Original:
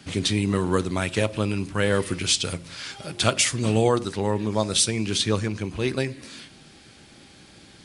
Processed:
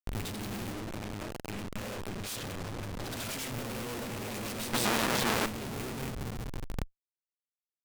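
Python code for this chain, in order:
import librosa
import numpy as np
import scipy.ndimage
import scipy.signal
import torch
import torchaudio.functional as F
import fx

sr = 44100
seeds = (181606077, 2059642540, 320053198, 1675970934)

y = fx.rattle_buzz(x, sr, strikes_db=-28.0, level_db=-16.0)
y = fx.robotise(y, sr, hz=303.0, at=(0.68, 1.48))
y = fx.echo_swell(y, sr, ms=100, loudest=5, wet_db=-17.0)
y = fx.dynamic_eq(y, sr, hz=230.0, q=4.9, threshold_db=-42.0, ratio=4.0, max_db=6)
y = fx.echo_pitch(y, sr, ms=103, semitones=1, count=3, db_per_echo=-3.0)
y = fx.high_shelf(y, sr, hz=5500.0, db=7.0, at=(2.26, 2.7))
y = fx.schmitt(y, sr, flips_db=-24.0)
y = fx.highpass(y, sr, hz=120.0, slope=24, at=(4.73, 5.46))
y = fx.cheby_harmonics(y, sr, harmonics=(2, 3, 8), levels_db=(-14, -10, -16), full_scale_db=-12.0)
y = y * librosa.db_to_amplitude(-4.5)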